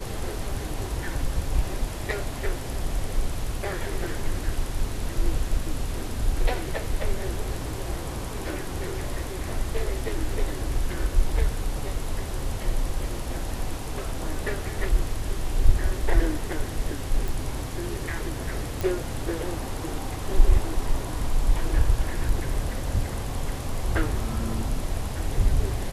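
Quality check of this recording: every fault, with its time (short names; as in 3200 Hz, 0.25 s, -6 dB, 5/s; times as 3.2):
17.28 pop
18.81 pop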